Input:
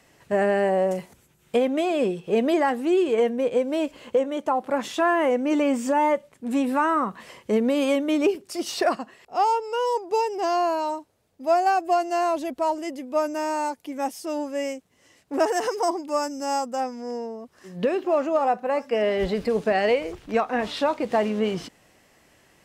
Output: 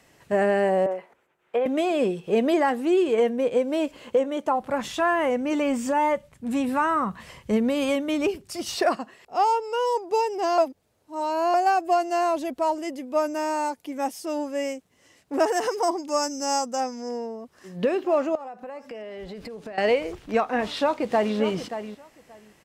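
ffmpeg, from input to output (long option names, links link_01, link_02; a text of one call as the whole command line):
ffmpeg -i in.wav -filter_complex "[0:a]asettb=1/sr,asplit=3[link_01][link_02][link_03];[link_01]atrim=end=0.864[link_04];[link_02]atrim=start=0.86:end=1.66,asetpts=PTS-STARTPTS,afade=type=in:duration=0.004:curve=qsin,afade=type=out:start_time=0.796:duration=0.004:curve=qsin,acrossover=split=370 2500:gain=0.0708 1 0.0794[link_05][link_06][link_07];[link_05][link_06][link_07]amix=inputs=3:normalize=0[link_08];[link_03]atrim=start=1.656[link_09];[link_04][link_08]acrossfade=duration=0.004:curve1=hsin:curve2=qsin[link_10];[link_10][link_09]acrossfade=duration=0.004:curve1=qsin:curve2=hsin,asplit=3[link_11][link_12][link_13];[link_11]afade=type=out:start_time=4.55:duration=0.02[link_14];[link_12]asubboost=boost=7:cutoff=120,afade=type=in:start_time=4.55:duration=0.02,afade=type=out:start_time=8.75:duration=0.02[link_15];[link_13]afade=type=in:start_time=8.75:duration=0.02[link_16];[link_14][link_15][link_16]amix=inputs=3:normalize=0,asettb=1/sr,asplit=3[link_17][link_18][link_19];[link_17]atrim=end=15.984[link_20];[link_18]atrim=start=15.98:end=17.09,asetpts=PTS-STARTPTS,afade=type=in:duration=0.004:curve=qsin,afade=type=out:start_time=1.106:duration=0.004:curve=qsin,equalizer=frequency=6100:width=2.2:gain=10[link_21];[link_19]atrim=start=17.086[link_22];[link_20][link_21]acrossfade=duration=0.004:curve1=hsin:curve2=qsin[link_23];[link_23][link_22]acrossfade=duration=0.004:curve1=qsin:curve2=hsin,asettb=1/sr,asplit=3[link_24][link_25][link_26];[link_24]atrim=end=18.354[link_27];[link_25]atrim=start=18.35:end=19.78,asetpts=PTS-STARTPTS,afade=type=in:duration=0.004:curve=qsin,afade=type=out:start_time=1.426:duration=0.004:curve=qsin,acompressor=threshold=-34dB:ratio=12:attack=3.2:release=140:knee=1:detection=peak[link_28];[link_26]atrim=start=19.776[link_29];[link_27][link_28]acrossfade=duration=0.004:curve1=hsin:curve2=qsin[link_30];[link_30][link_29]acrossfade=duration=0.004:curve1=qsin:curve2=hsin,asplit=2[link_31][link_32];[link_32]afade=type=in:start_time=20.67:duration=0.01,afade=type=out:start_time=21.36:duration=0.01,aecho=0:1:580|1160:0.298538|0.0447807[link_33];[link_31][link_33]amix=inputs=2:normalize=0,asplit=3[link_34][link_35][link_36];[link_34]atrim=end=10.582[link_37];[link_35]atrim=start=10.578:end=11.542,asetpts=PTS-STARTPTS,areverse[link_38];[link_36]atrim=start=11.538[link_39];[link_37][link_38]acrossfade=duration=0.004:curve1=hsin:curve2=hsin[link_40];[link_40][link_39]acrossfade=duration=0.004:curve1=hsin:curve2=hsin" out.wav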